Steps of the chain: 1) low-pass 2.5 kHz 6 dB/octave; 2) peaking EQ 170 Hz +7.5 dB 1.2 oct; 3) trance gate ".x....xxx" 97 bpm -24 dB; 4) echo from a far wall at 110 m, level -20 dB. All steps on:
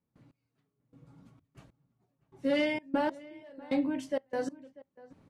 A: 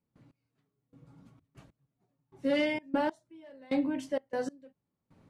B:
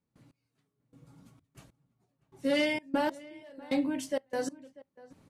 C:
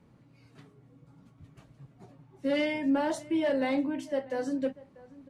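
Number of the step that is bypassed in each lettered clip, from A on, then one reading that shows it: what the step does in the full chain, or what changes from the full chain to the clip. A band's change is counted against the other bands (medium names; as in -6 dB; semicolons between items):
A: 4, echo-to-direct -22.0 dB to none; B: 1, 4 kHz band +4.0 dB; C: 3, 125 Hz band +2.5 dB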